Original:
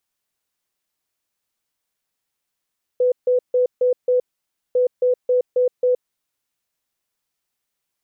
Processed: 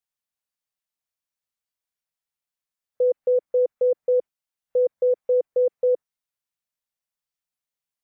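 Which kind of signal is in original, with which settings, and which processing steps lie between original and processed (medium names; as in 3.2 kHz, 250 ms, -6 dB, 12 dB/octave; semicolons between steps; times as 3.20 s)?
beep pattern sine 499 Hz, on 0.12 s, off 0.15 s, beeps 5, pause 0.55 s, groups 2, -13.5 dBFS
peaking EQ 350 Hz -12 dB 0.36 oct; spectral noise reduction 11 dB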